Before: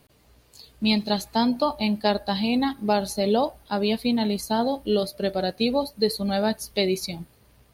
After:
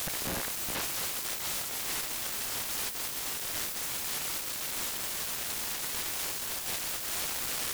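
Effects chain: delta modulation 16 kbps, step -24 dBFS; overdrive pedal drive 39 dB, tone 1100 Hz, clips at -10 dBFS; LPF 1500 Hz 6 dB/oct; hum 60 Hz, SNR 18 dB; diffused feedback echo 0.968 s, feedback 50%, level -9 dB; sine folder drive 19 dB, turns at -29 dBFS

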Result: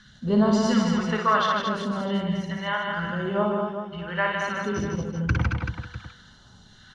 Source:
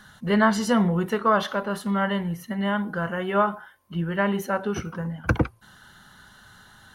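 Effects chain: LPF 6100 Hz 24 dB/oct; de-hum 97.46 Hz, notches 10; phaser stages 2, 0.66 Hz, lowest notch 210–1900 Hz; tapped delay 57/154/225/383/548/648 ms -4/-5/-4.5/-8.5/-19.5/-16 dB

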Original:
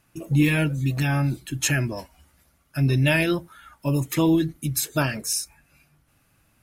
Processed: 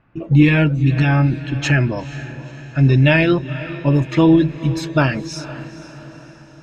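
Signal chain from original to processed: low-pass opened by the level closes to 2100 Hz, open at -20 dBFS; air absorption 200 m; diffused feedback echo 0.483 s, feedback 51%, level -14.5 dB; gain +8 dB

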